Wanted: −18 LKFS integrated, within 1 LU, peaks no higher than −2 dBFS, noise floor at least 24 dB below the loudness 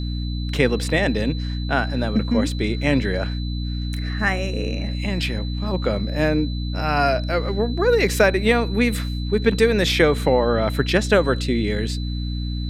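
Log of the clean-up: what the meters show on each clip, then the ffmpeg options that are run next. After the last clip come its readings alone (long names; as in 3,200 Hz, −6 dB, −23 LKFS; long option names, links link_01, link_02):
mains hum 60 Hz; hum harmonics up to 300 Hz; level of the hum −23 dBFS; interfering tone 4,000 Hz; level of the tone −37 dBFS; integrated loudness −21.5 LKFS; sample peak −2.5 dBFS; target loudness −18.0 LKFS
→ -af "bandreject=frequency=60:width_type=h:width=4,bandreject=frequency=120:width_type=h:width=4,bandreject=frequency=180:width_type=h:width=4,bandreject=frequency=240:width_type=h:width=4,bandreject=frequency=300:width_type=h:width=4"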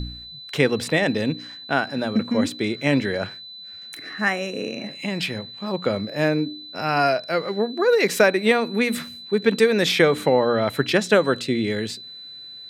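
mains hum none found; interfering tone 4,000 Hz; level of the tone −37 dBFS
→ -af "bandreject=frequency=4000:width=30"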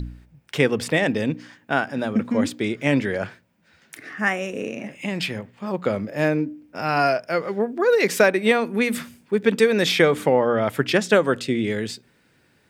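interfering tone none found; integrated loudness −22.0 LKFS; sample peak −3.0 dBFS; target loudness −18.0 LKFS
→ -af "volume=4dB,alimiter=limit=-2dB:level=0:latency=1"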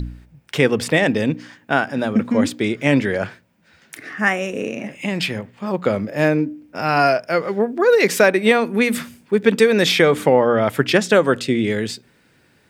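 integrated loudness −18.5 LKFS; sample peak −2.0 dBFS; background noise floor −57 dBFS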